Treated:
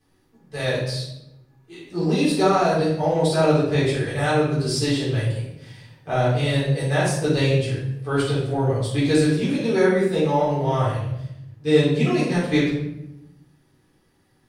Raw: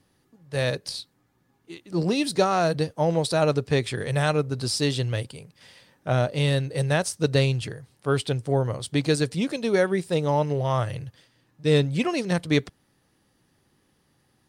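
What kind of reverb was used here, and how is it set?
shoebox room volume 260 m³, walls mixed, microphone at 3.8 m; gain -8.5 dB

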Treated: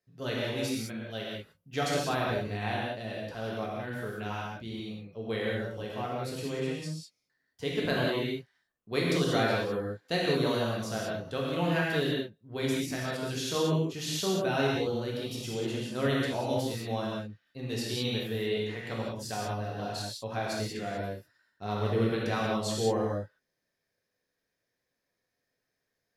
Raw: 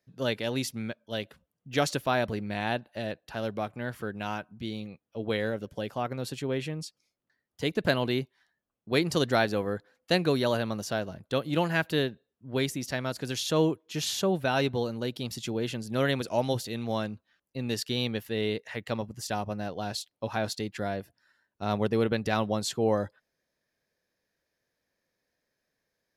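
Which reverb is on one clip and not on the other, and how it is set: non-linear reverb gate 0.22 s flat, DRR -5 dB; gain -7.5 dB

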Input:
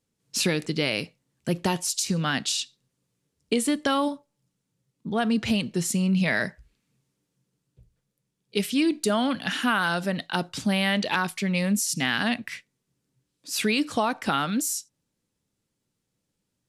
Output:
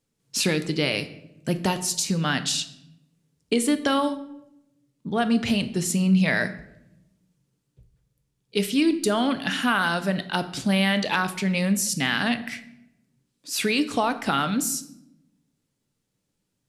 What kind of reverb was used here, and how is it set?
shoebox room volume 270 m³, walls mixed, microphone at 0.33 m; gain +1 dB

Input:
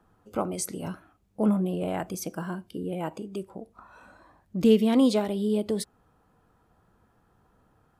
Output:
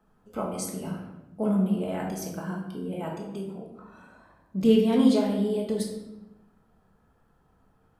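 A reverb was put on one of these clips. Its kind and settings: shoebox room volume 390 m³, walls mixed, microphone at 1.5 m; gain -5 dB

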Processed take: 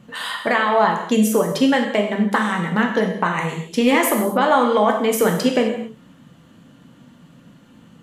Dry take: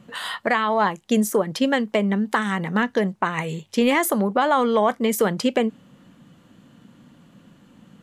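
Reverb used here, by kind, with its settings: non-linear reverb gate 0.29 s falling, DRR 1.5 dB; gain +1 dB

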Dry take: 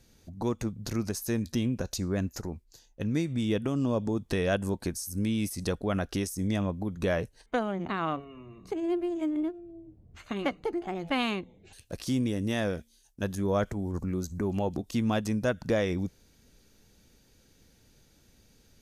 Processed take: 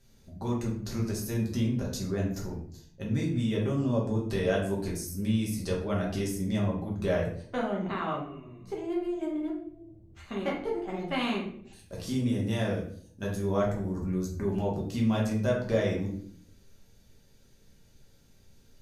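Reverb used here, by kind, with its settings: shoebox room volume 79 m³, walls mixed, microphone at 1.2 m; gain -6.5 dB

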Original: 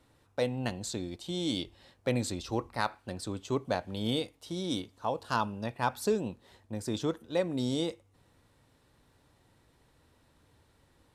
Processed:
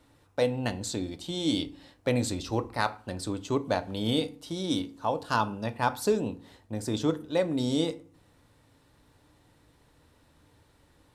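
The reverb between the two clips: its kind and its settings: FDN reverb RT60 0.42 s, low-frequency decay 1.35×, high-frequency decay 0.65×, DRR 11 dB; gain +3 dB

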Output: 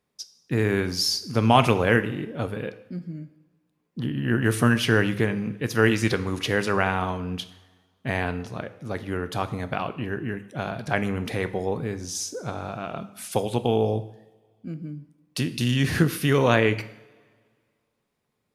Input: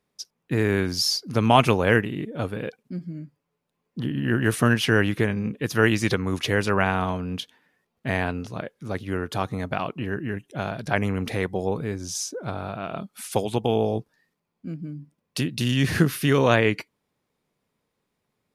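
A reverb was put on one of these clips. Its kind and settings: two-slope reverb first 0.7 s, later 1.9 s, from -16 dB, DRR 10.5 dB; gain -1 dB

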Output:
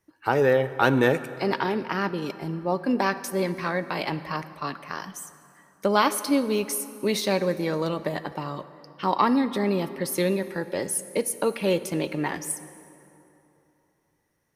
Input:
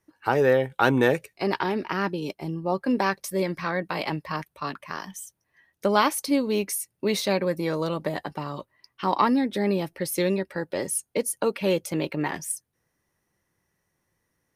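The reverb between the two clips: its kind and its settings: plate-style reverb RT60 3 s, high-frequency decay 0.6×, DRR 12.5 dB

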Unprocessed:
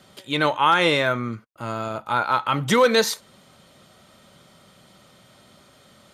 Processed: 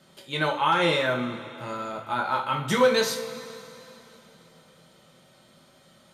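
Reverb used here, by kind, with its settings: two-slope reverb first 0.33 s, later 3.3 s, from -18 dB, DRR -0.5 dB; gain -7.5 dB

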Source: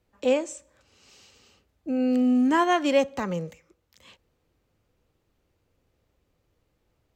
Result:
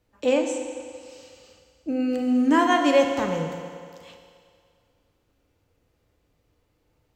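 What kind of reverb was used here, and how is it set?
FDN reverb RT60 2.2 s, low-frequency decay 0.75×, high-frequency decay 0.95×, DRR 3 dB; gain +1 dB

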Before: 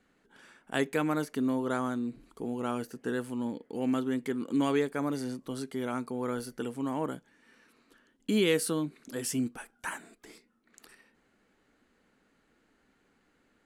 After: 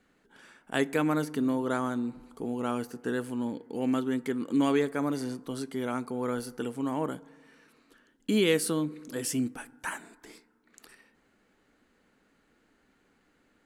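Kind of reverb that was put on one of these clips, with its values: FDN reverb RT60 1.6 s, high-frequency decay 0.3×, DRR 20 dB; gain +1.5 dB

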